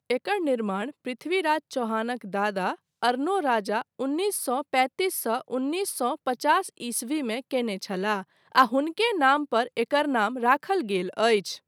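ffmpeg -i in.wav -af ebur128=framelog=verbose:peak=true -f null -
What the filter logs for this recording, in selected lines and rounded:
Integrated loudness:
  I:         -26.0 LUFS
  Threshold: -36.0 LUFS
Loudness range:
  LRA:         3.5 LU
  Threshold: -46.2 LUFS
  LRA low:   -27.6 LUFS
  LRA high:  -24.1 LUFS
True peak:
  Peak:       -4.9 dBFS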